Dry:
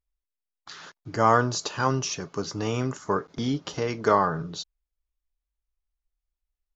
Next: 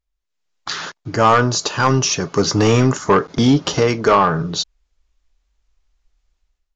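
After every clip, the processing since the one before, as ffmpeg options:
-af "dynaudnorm=f=110:g=7:m=5.01,aresample=16000,asoftclip=type=tanh:threshold=0.316,aresample=44100,volume=1.78"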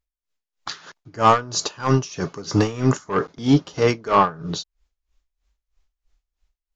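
-af "aeval=exprs='val(0)*pow(10,-20*(0.5-0.5*cos(2*PI*3.1*n/s))/20)':c=same"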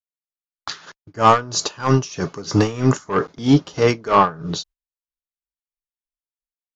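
-af "agate=range=0.0126:threshold=0.00708:ratio=16:detection=peak,volume=1.26"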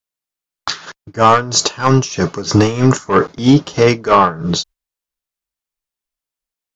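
-af "alimiter=level_in=2.99:limit=0.891:release=50:level=0:latency=1,volume=0.891"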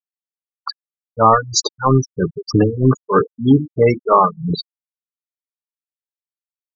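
-af "bandreject=f=50:t=h:w=6,bandreject=f=100:t=h:w=6,bandreject=f=150:t=h:w=6,bandreject=f=200:t=h:w=6,bandreject=f=250:t=h:w=6,bandreject=f=300:t=h:w=6,bandreject=f=350:t=h:w=6,afftfilt=real='re*gte(hypot(re,im),0.398)':imag='im*gte(hypot(re,im),0.398)':win_size=1024:overlap=0.75,volume=0.841"

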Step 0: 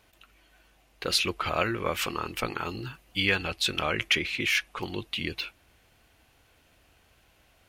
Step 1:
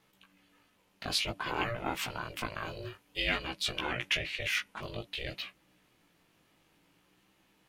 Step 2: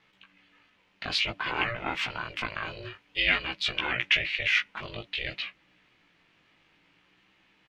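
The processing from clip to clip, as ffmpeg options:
-af "aeval=exprs='val(0)*sin(2*PI*240*n/s)':c=same,flanger=delay=15.5:depth=3.7:speed=0.54"
-af "firequalizer=gain_entry='entry(560,0);entry(2100,9);entry(11000,-19)':delay=0.05:min_phase=1"

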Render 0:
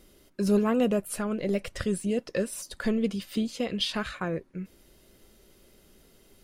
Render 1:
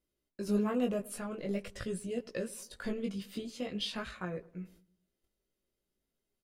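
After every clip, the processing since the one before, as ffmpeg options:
-filter_complex "[0:a]agate=range=0.1:threshold=0.00282:ratio=16:detection=peak,flanger=delay=16.5:depth=4.5:speed=0.46,asplit=2[s0][s1];[s1]adelay=106,lowpass=f=1700:p=1,volume=0.0944,asplit=2[s2][s3];[s3]adelay=106,lowpass=f=1700:p=1,volume=0.49,asplit=2[s4][s5];[s5]adelay=106,lowpass=f=1700:p=1,volume=0.49,asplit=2[s6][s7];[s7]adelay=106,lowpass=f=1700:p=1,volume=0.49[s8];[s0][s2][s4][s6][s8]amix=inputs=5:normalize=0,volume=0.562"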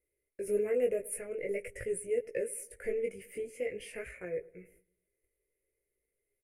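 -af "firequalizer=gain_entry='entry(120,0);entry(200,-14);entry(450,11);entry(810,-12);entry(1100,-18);entry(2100,12);entry(3700,-27);entry(5200,-13);entry(10000,11);entry(15000,-3)':delay=0.05:min_phase=1,volume=0.794"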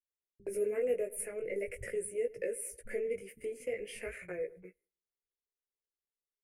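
-filter_complex "[0:a]agate=range=0.0631:threshold=0.00355:ratio=16:detection=peak,asplit=2[s0][s1];[s1]acompressor=threshold=0.0112:ratio=6,volume=0.891[s2];[s0][s2]amix=inputs=2:normalize=0,acrossover=split=180[s3][s4];[s4]adelay=70[s5];[s3][s5]amix=inputs=2:normalize=0,volume=0.631"

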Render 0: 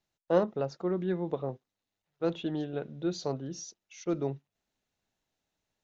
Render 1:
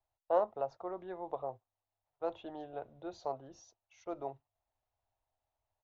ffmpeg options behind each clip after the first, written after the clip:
-filter_complex "[0:a]firequalizer=gain_entry='entry(110,0);entry(160,-27);entry(230,-17);entry(420,-12);entry(680,2);entry(980,0);entry(1500,-11);entry(3300,-14);entry(4900,-18)':delay=0.05:min_phase=1,acrossover=split=210|1500[s0][s1][s2];[s0]alimiter=level_in=47.3:limit=0.0631:level=0:latency=1,volume=0.0211[s3];[s3][s1][s2]amix=inputs=3:normalize=0,volume=1.12"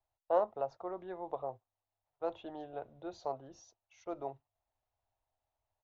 -af anull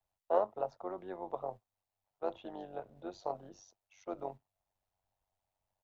-filter_complex "[0:a]tremolo=f=96:d=0.71,acrossover=split=120|780|2500[s0][s1][s2][s3];[s0]acrusher=bits=3:mode=log:mix=0:aa=0.000001[s4];[s4][s1][s2][s3]amix=inputs=4:normalize=0,volume=1.41"

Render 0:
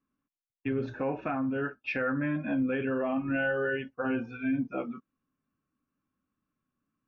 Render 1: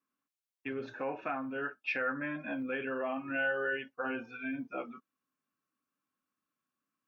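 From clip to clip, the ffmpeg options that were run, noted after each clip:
-af "highpass=f=730:p=1"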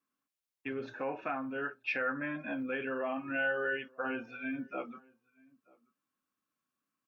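-filter_complex "[0:a]asplit=2[s0][s1];[s1]adelay=932.9,volume=0.0501,highshelf=f=4000:g=-21[s2];[s0][s2]amix=inputs=2:normalize=0"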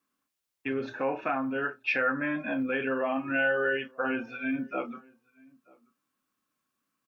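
-filter_complex "[0:a]asplit=2[s0][s1];[s1]adelay=30,volume=0.237[s2];[s0][s2]amix=inputs=2:normalize=0,volume=2"

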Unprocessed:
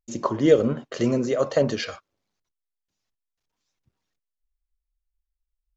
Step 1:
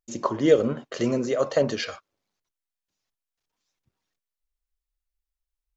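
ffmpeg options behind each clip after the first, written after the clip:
-af "lowshelf=f=250:g=-5"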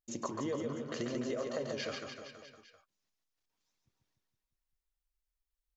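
-filter_complex "[0:a]acompressor=threshold=0.0316:ratio=6,asplit=2[s0][s1];[s1]aecho=0:1:140|294|463.4|649.7|854.7:0.631|0.398|0.251|0.158|0.1[s2];[s0][s2]amix=inputs=2:normalize=0,volume=0.531"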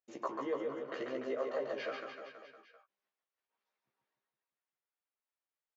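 -filter_complex "[0:a]highpass=430,lowpass=2100,asplit=2[s0][s1];[s1]adelay=15,volume=0.708[s2];[s0][s2]amix=inputs=2:normalize=0,volume=1.12"

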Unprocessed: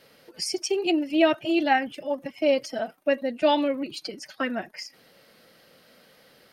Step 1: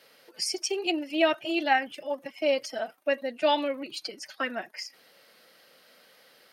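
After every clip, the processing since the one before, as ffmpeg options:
-af "highpass=f=610:p=1"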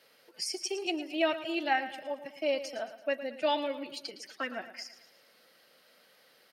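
-af "aecho=1:1:112|224|336|448|560:0.224|0.105|0.0495|0.0232|0.0109,volume=0.562"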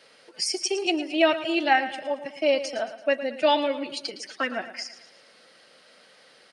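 -af "aresample=22050,aresample=44100,volume=2.51"

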